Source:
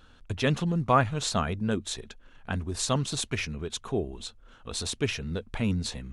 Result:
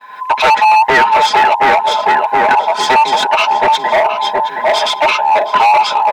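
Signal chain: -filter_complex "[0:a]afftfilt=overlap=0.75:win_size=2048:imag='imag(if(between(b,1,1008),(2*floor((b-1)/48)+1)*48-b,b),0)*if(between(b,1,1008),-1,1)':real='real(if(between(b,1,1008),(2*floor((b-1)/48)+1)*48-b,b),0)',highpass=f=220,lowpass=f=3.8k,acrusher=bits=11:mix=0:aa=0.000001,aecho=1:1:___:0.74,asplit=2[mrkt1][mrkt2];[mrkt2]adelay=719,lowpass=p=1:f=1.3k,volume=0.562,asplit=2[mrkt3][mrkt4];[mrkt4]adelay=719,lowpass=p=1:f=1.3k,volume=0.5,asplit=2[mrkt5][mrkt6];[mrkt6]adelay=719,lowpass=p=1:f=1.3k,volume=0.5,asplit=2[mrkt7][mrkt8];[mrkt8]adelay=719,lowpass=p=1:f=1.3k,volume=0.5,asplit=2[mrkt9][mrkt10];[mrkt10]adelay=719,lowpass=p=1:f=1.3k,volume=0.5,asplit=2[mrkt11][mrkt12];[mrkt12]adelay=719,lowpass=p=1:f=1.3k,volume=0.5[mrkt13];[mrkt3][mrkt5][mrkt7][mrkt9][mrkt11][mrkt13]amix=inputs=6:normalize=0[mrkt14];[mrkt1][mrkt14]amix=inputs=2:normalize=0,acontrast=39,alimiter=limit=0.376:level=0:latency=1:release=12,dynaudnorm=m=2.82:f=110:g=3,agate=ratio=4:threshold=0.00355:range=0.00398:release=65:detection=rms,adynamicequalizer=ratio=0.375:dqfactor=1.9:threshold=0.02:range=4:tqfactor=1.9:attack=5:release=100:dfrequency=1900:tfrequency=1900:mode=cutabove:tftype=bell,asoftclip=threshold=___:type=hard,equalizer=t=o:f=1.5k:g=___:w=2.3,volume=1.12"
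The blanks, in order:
4.7, 0.178, 11.5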